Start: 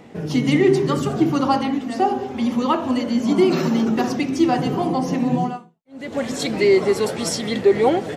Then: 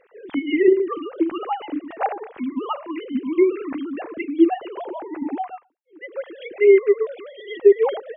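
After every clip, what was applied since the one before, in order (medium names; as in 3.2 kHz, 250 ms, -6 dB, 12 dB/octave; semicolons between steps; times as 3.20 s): formants replaced by sine waves; trim -2 dB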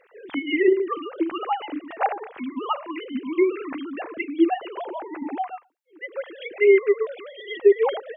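bass shelf 480 Hz -10 dB; trim +3 dB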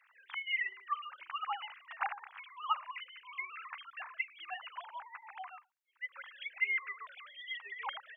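steep high-pass 960 Hz 36 dB/octave; trim -5.5 dB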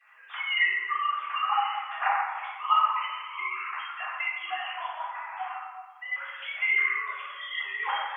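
reverberation RT60 1.5 s, pre-delay 3 ms, DRR -13 dB; trim -3.5 dB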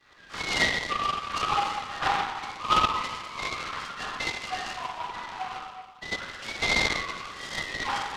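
delay time shaken by noise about 1.6 kHz, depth 0.058 ms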